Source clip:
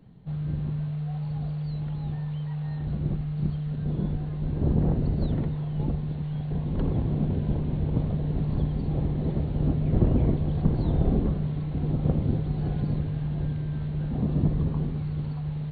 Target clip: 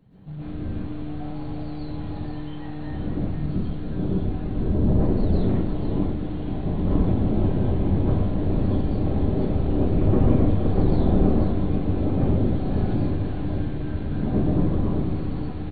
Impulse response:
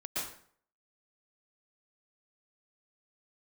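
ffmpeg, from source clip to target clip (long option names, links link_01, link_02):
-filter_complex "[0:a]asettb=1/sr,asplit=3[link_01][link_02][link_03];[link_01]atrim=end=3.374[link_04];[link_02]atrim=start=3.37:end=4.87,asetpts=PTS-STARTPTS,afade=type=in:duration=0.004:curve=qsin,afade=type=out:start_time=1.496:duration=0.004:curve=qsin,acrossover=split=350|3000[link_05][link_06][link_07];[link_06]acompressor=threshold=-41dB:ratio=6[link_08];[link_05][link_08][link_07]amix=inputs=3:normalize=0[link_09];[link_03]atrim=start=4.866[link_10];[link_04][link_09]acrossfade=duration=0.004:curve1=hsin:curve2=qsin[link_11];[link_11][link_10]acrossfade=duration=0.004:curve1=qsin:curve2=hsin,aeval=exprs='(tanh(10*val(0)+0.75)-tanh(0.75))/10':channel_layout=same,aecho=1:1:487:0.398[link_12];[1:a]atrim=start_sample=2205[link_13];[link_12][link_13]afir=irnorm=-1:irlink=0,volume=6dB"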